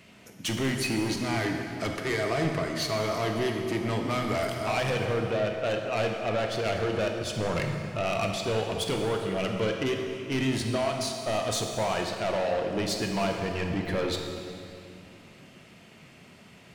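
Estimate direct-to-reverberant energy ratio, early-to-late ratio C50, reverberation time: 2.5 dB, 3.5 dB, 2.6 s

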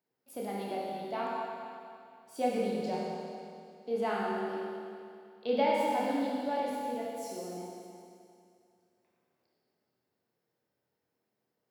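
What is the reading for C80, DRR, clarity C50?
−0.5 dB, −4.5 dB, −2.0 dB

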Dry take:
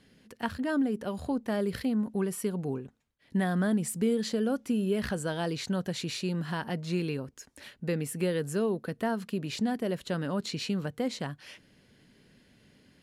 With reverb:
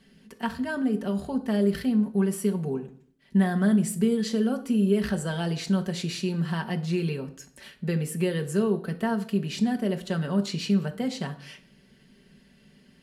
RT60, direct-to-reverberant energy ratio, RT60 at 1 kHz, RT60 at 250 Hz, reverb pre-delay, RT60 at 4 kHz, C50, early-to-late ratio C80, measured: 0.55 s, 3.0 dB, 0.50 s, 0.75 s, 4 ms, 0.45 s, 14.5 dB, 18.0 dB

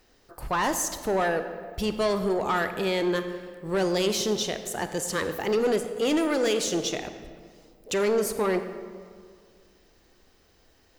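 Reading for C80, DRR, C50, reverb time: 10.5 dB, 8.5 dB, 9.5 dB, 1.9 s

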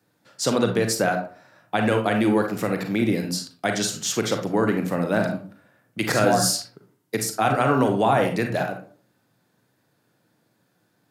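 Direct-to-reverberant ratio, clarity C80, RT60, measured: 4.0 dB, 13.0 dB, 0.45 s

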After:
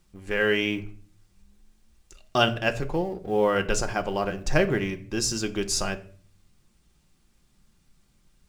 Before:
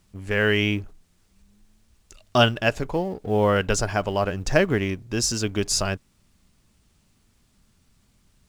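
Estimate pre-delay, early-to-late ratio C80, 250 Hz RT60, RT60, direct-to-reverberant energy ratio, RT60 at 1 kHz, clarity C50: 3 ms, 20.5 dB, 0.70 s, 0.45 s, 5.5 dB, 0.40 s, 16.5 dB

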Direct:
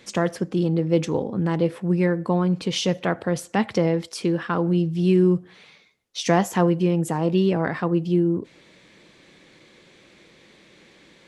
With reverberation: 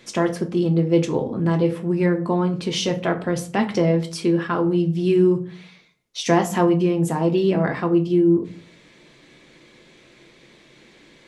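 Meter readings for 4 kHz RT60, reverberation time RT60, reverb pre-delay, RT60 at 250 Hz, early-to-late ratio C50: 0.25 s, 0.40 s, 3 ms, 0.60 s, 15.0 dB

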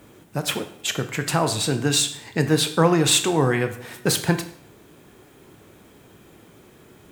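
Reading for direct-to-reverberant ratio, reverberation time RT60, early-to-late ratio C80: 8.0 dB, 0.60 s, 14.5 dB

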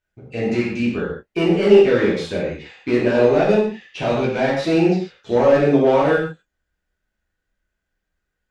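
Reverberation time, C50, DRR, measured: non-exponential decay, 2.5 dB, −7.5 dB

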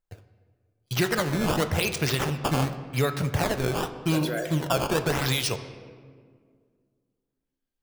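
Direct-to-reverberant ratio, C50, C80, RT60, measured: 9.0 dB, 11.0 dB, 12.0 dB, 1.9 s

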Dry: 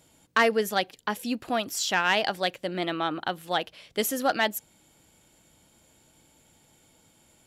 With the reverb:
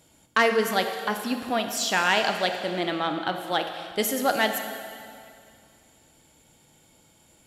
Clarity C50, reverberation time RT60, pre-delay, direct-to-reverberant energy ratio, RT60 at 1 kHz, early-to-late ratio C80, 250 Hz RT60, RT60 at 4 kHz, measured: 6.5 dB, 2.4 s, 19 ms, 5.5 dB, 2.4 s, 7.5 dB, 2.3 s, 2.2 s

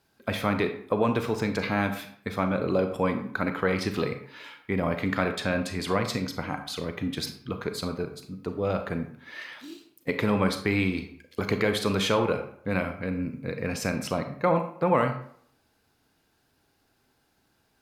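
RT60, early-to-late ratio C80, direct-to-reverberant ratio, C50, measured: 0.60 s, 12.0 dB, 7.0 dB, 9.0 dB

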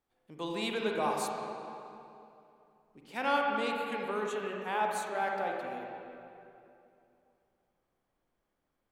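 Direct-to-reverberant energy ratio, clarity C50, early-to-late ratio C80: −0.5 dB, 0.5 dB, 1.5 dB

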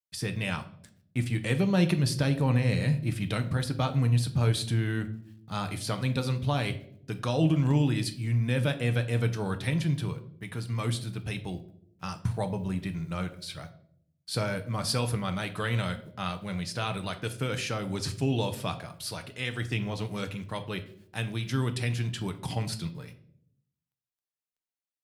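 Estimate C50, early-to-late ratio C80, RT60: 14.0 dB, 17.0 dB, 0.65 s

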